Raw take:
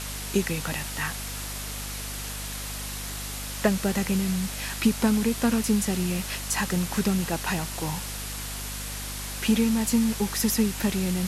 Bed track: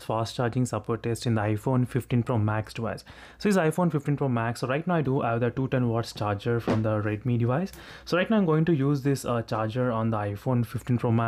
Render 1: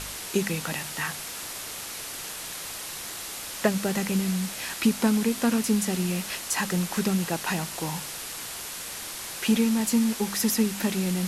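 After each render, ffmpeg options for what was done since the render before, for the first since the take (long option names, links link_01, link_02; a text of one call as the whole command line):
ffmpeg -i in.wav -af "bandreject=frequency=50:width_type=h:width=4,bandreject=frequency=100:width_type=h:width=4,bandreject=frequency=150:width_type=h:width=4,bandreject=frequency=200:width_type=h:width=4,bandreject=frequency=250:width_type=h:width=4" out.wav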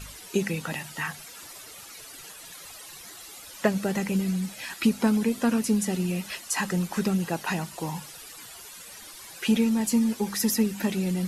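ffmpeg -i in.wav -af "afftdn=noise_reduction=13:noise_floor=-37" out.wav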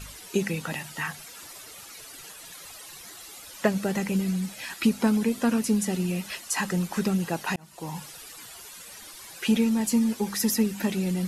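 ffmpeg -i in.wav -filter_complex "[0:a]asplit=2[link_01][link_02];[link_01]atrim=end=7.56,asetpts=PTS-STARTPTS,afade=type=out:start_time=7.556:duration=0.004:curve=hsin[link_03];[link_02]atrim=start=7.56,asetpts=PTS-STARTPTS,afade=type=in:duration=0.46[link_04];[link_03][link_04]concat=n=2:v=0:a=1" out.wav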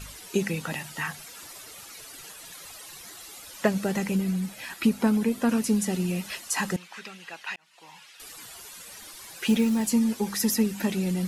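ffmpeg -i in.wav -filter_complex "[0:a]asettb=1/sr,asplit=3[link_01][link_02][link_03];[link_01]atrim=end=4.154[link_04];[link_02]atrim=start=4.15:end=5.49,asetpts=PTS-STARTPTS,afade=type=in:duration=0.004:curve=qsin,afade=type=out:start_time=1.336:duration=0.004:curve=qsin,equalizer=frequency=5900:width=0.6:gain=-4[link_05];[link_03]atrim=start=5.486[link_06];[link_04][link_05]acrossfade=duration=0.004:curve1=hsin:curve2=qsin[link_07];[link_07][link_06]acrossfade=duration=0.004:curve1=qsin:curve2=hsin,asettb=1/sr,asplit=3[link_08][link_09][link_10];[link_08]atrim=end=6.764[link_11];[link_09]atrim=start=6.76:end=8.2,asetpts=PTS-STARTPTS,afade=type=in:duration=0.004:curve=qsin,afade=type=out:start_time=1.436:duration=0.004:curve=qsin,bandpass=frequency=2500:width_type=q:width=1.3[link_12];[link_10]atrim=start=8.196[link_13];[link_11][link_12]acrossfade=duration=0.004:curve1=hsin:curve2=qsin[link_14];[link_14][link_13]acrossfade=duration=0.004:curve1=qsin:curve2=hsin,asettb=1/sr,asplit=3[link_15][link_16][link_17];[link_15]atrim=end=8.914[link_18];[link_16]atrim=start=8.91:end=9.9,asetpts=PTS-STARTPTS,afade=type=in:duration=0.004:curve=qsin,afade=type=out:start_time=0.986:duration=0.004:curve=qsin,acrusher=bits=7:mode=log:mix=0:aa=0.000001[link_19];[link_17]atrim=start=9.896[link_20];[link_18][link_19]acrossfade=duration=0.004:curve1=hsin:curve2=qsin[link_21];[link_21][link_20]acrossfade=duration=0.004:curve1=qsin:curve2=hsin" out.wav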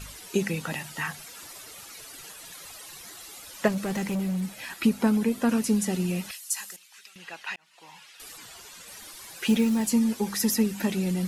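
ffmpeg -i in.wav -filter_complex "[0:a]asettb=1/sr,asplit=3[link_01][link_02][link_03];[link_01]atrim=end=3.684[link_04];[link_02]atrim=start=3.68:end=4.43,asetpts=PTS-STARTPTS,afade=type=in:duration=0.004:curve=qsin,afade=type=out:start_time=0.746:duration=0.004:curve=qsin,asoftclip=type=hard:threshold=-25dB[link_05];[link_03]atrim=start=4.426[link_06];[link_04][link_05]acrossfade=duration=0.004:curve1=hsin:curve2=qsin[link_07];[link_07][link_06]acrossfade=duration=0.004:curve1=qsin:curve2=hsin,asettb=1/sr,asplit=3[link_08][link_09][link_10];[link_08]atrim=end=6.314[link_11];[link_09]atrim=start=6.31:end=7.16,asetpts=PTS-STARTPTS,afade=type=in:duration=0.004:curve=qsin,afade=type=out:start_time=0.846:duration=0.004:curve=qsin,aderivative[link_12];[link_10]atrim=start=7.156[link_13];[link_11][link_12]acrossfade=duration=0.004:curve1=hsin:curve2=qsin[link_14];[link_14][link_13]acrossfade=duration=0.004:curve1=qsin:curve2=hsin,asettb=1/sr,asplit=3[link_15][link_16][link_17];[link_15]atrim=end=8.374[link_18];[link_16]atrim=start=8.37:end=8.88,asetpts=PTS-STARTPTS,afade=type=in:duration=0.004:curve=qsin,afade=type=out:start_time=0.506:duration=0.004:curve=qsin,equalizer=frequency=11000:width_type=o:width=0.48:gain=-8.5[link_19];[link_17]atrim=start=8.876[link_20];[link_18][link_19]acrossfade=duration=0.004:curve1=hsin:curve2=qsin[link_21];[link_21][link_20]acrossfade=duration=0.004:curve1=qsin:curve2=hsin" out.wav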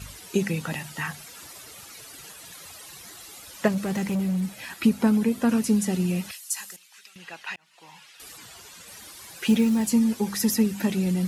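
ffmpeg -i in.wav -af "highpass=77,lowshelf=frequency=110:gain=11.5" out.wav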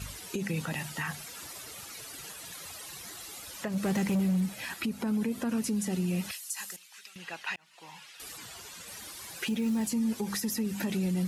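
ffmpeg -i in.wav -af "acompressor=threshold=-24dB:ratio=4,alimiter=limit=-23dB:level=0:latency=1:release=89" out.wav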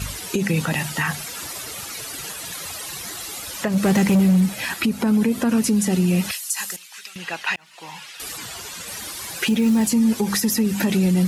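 ffmpeg -i in.wav -af "volume=11.5dB" out.wav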